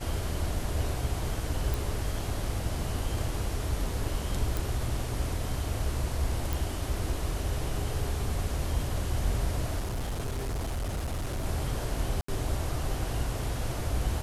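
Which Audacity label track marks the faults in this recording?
1.740000	1.740000	pop
4.570000	4.570000	pop
6.530000	6.530000	pop
9.790000	11.460000	clipped -28.5 dBFS
12.210000	12.280000	gap 74 ms

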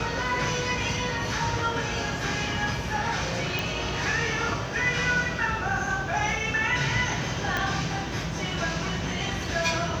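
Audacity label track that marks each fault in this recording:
3.590000	3.590000	pop
7.570000	7.570000	pop -12 dBFS

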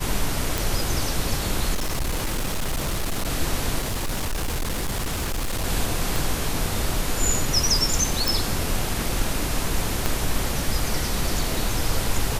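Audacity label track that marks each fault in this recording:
0.580000	0.580000	pop
1.740000	3.290000	clipped -21 dBFS
3.790000	5.650000	clipped -22 dBFS
6.160000	6.160000	pop
8.280000	8.280000	pop
10.060000	10.060000	pop -7 dBFS

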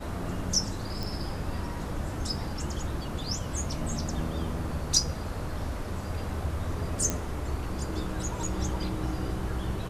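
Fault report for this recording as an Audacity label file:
1.030000	1.030000	pop
7.100000	7.100000	pop

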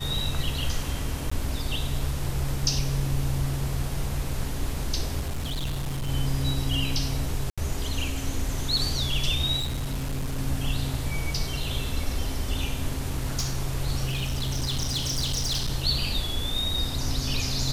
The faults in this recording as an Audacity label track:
1.300000	1.310000	gap 15 ms
5.200000	6.090000	clipped -25.5 dBFS
7.500000	7.580000	gap 76 ms
9.580000	10.380000	clipped -25 dBFS
13.100000	13.550000	clipped -22 dBFS
14.070000	15.700000	clipped -23 dBFS

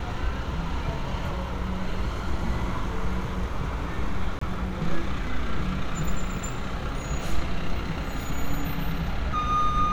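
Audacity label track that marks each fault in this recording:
4.390000	4.410000	gap 24 ms

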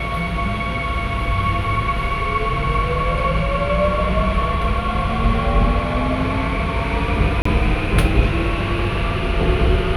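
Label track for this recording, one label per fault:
7.420000	7.450000	gap 34 ms

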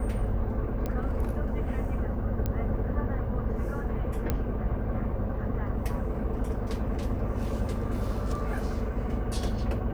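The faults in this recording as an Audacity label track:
0.860000	0.860000	pop -19 dBFS
2.460000	2.460000	pop -17 dBFS
4.300000	4.300000	pop -14 dBFS

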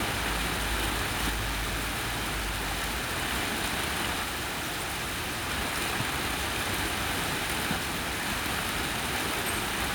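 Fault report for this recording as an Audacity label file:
1.290000	3.160000	clipped -27.5 dBFS
4.230000	5.500000	clipped -29.5 dBFS
7.760000	8.270000	clipped -27.5 dBFS

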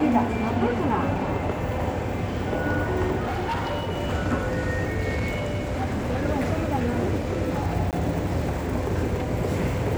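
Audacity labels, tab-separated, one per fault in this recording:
3.200000	3.920000	clipped -23.5 dBFS
5.090000	6.250000	clipped -22.5 dBFS
7.910000	7.930000	gap 18 ms

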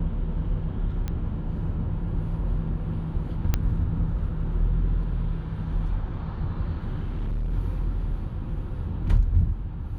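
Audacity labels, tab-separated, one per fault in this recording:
1.080000	1.080000	pop -18 dBFS
3.540000	3.540000	pop -9 dBFS
7.010000	7.530000	clipped -24.5 dBFS

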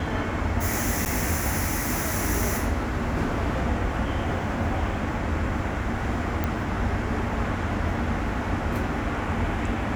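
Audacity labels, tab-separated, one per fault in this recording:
1.050000	1.060000	gap 9.5 ms
6.440000	6.440000	pop -13 dBFS

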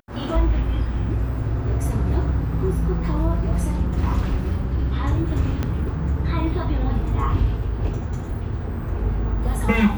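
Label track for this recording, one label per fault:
5.630000	5.630000	pop -12 dBFS

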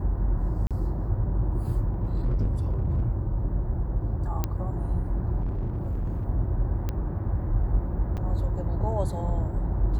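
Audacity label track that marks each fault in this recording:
0.670000	0.710000	gap 37 ms
1.870000	3.050000	clipped -21 dBFS
4.440000	4.440000	pop -13 dBFS
5.400000	6.240000	clipped -25 dBFS
6.890000	6.890000	pop -17 dBFS
8.170000	8.180000	gap 7 ms

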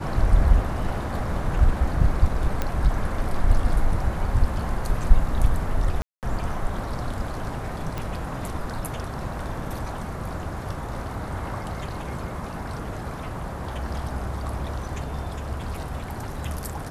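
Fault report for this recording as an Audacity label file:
2.620000	2.620000	pop -11 dBFS
6.020000	6.230000	gap 0.208 s
7.980000	7.980000	pop

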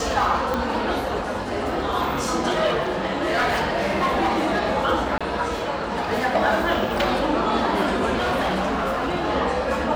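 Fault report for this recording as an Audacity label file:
0.540000	0.540000	pop -11 dBFS
2.650000	4.600000	clipped -17 dBFS
5.180000	5.210000	gap 26 ms
8.160000	9.090000	clipped -19 dBFS

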